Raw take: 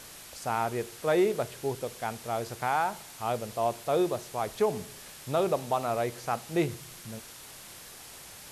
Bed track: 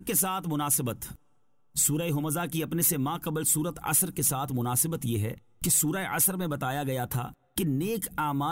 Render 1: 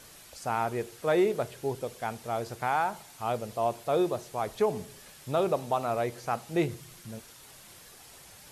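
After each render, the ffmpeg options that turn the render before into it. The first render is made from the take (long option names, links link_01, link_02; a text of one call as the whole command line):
ffmpeg -i in.wav -af "afftdn=noise_reduction=6:noise_floor=-48" out.wav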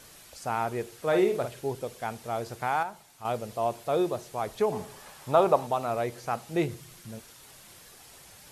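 ffmpeg -i in.wav -filter_complex "[0:a]asettb=1/sr,asplit=3[link_01][link_02][link_03];[link_01]atrim=end=1.084[link_04];[link_02]atrim=start=1.08:end=1.61,asetpts=PTS-STARTPTS,afade=type=in:duration=0.004:curve=qsin,afade=type=out:start_time=0.526:duration=0.004:curve=qsin,asplit=2[link_05][link_06];[link_06]adelay=49,volume=-7dB[link_07];[link_05][link_07]amix=inputs=2:normalize=0,atrim=end_sample=23373[link_08];[link_03]atrim=start=1.606[link_09];[link_04][link_08]acrossfade=duration=0.004:curve1=hsin:curve2=qsin[link_10];[link_10][link_09]acrossfade=duration=0.004:curve1=qsin:curve2=hsin,asettb=1/sr,asplit=3[link_11][link_12][link_13];[link_11]atrim=end=4.724[link_14];[link_12]atrim=start=4.72:end=5.67,asetpts=PTS-STARTPTS,afade=type=in:duration=0.004:curve=qsin,afade=type=out:start_time=0.946:duration=0.004:curve=qsin,equalizer=frequency=930:width_type=o:width=1.3:gain=11[link_15];[link_13]atrim=start=5.666[link_16];[link_14][link_15]acrossfade=duration=0.004:curve1=hsin:curve2=qsin[link_17];[link_17][link_16]acrossfade=duration=0.004:curve1=qsin:curve2=hsin,asplit=3[link_18][link_19][link_20];[link_18]atrim=end=2.832[link_21];[link_19]atrim=start=2.828:end=3.252,asetpts=PTS-STARTPTS,volume=-6.5dB[link_22];[link_20]atrim=start=3.248[link_23];[link_21][link_22]acrossfade=duration=0.004:curve1=hsin:curve2=hsin[link_24];[link_24][link_23]acrossfade=duration=0.004:curve1=hsin:curve2=hsin" out.wav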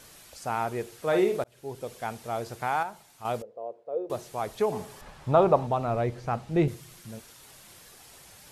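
ffmpeg -i in.wav -filter_complex "[0:a]asettb=1/sr,asplit=3[link_01][link_02][link_03];[link_01]atrim=end=3.424[link_04];[link_02]atrim=start=3.42:end=4.1,asetpts=PTS-STARTPTS,afade=type=in:duration=0.004:curve=qsin,afade=type=out:start_time=0.676:duration=0.004:curve=qsin,bandpass=frequency=490:width_type=q:width=5.1[link_05];[link_03]atrim=start=4.096[link_06];[link_04][link_05]acrossfade=duration=0.004:curve1=hsin:curve2=qsin[link_07];[link_07][link_06]acrossfade=duration=0.004:curve1=qsin:curve2=hsin,asettb=1/sr,asplit=3[link_08][link_09][link_10];[link_08]atrim=end=5.014[link_11];[link_09]atrim=start=5.01:end=6.68,asetpts=PTS-STARTPTS,afade=type=in:duration=0.004:curve=qsin,afade=type=out:start_time=1.666:duration=0.004:curve=qsin,aemphasis=mode=reproduction:type=bsi[link_12];[link_10]atrim=start=6.676[link_13];[link_11][link_12]acrossfade=duration=0.004:curve1=hsin:curve2=qsin[link_14];[link_14][link_13]acrossfade=duration=0.004:curve1=qsin:curve2=hsin,asplit=2[link_15][link_16];[link_15]atrim=end=1.44,asetpts=PTS-STARTPTS,afade=type=out:start_time=1.436:duration=0.004:curve=hsin[link_17];[link_16]atrim=start=1.44,asetpts=PTS-STARTPTS,afade=type=in:duration=0.49[link_18];[link_17][link_18]concat=n=2:v=0:a=1" out.wav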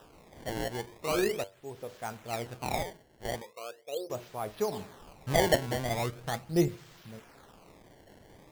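ffmpeg -i in.wav -af "flanger=delay=5.7:depth=4.7:regen=76:speed=0.3:shape=sinusoidal,acrusher=samples=20:mix=1:aa=0.000001:lfo=1:lforange=32:lforate=0.4" out.wav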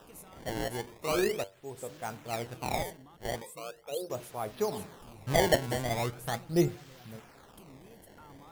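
ffmpeg -i in.wav -i bed.wav -filter_complex "[1:a]volume=-26dB[link_01];[0:a][link_01]amix=inputs=2:normalize=0" out.wav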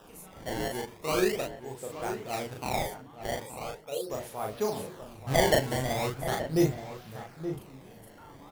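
ffmpeg -i in.wav -filter_complex "[0:a]asplit=2[link_01][link_02];[link_02]adelay=38,volume=-2.5dB[link_03];[link_01][link_03]amix=inputs=2:normalize=0,asplit=2[link_04][link_05];[link_05]adelay=874.6,volume=-10dB,highshelf=frequency=4000:gain=-19.7[link_06];[link_04][link_06]amix=inputs=2:normalize=0" out.wav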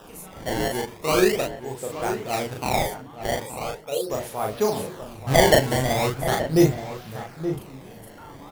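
ffmpeg -i in.wav -af "volume=7.5dB" out.wav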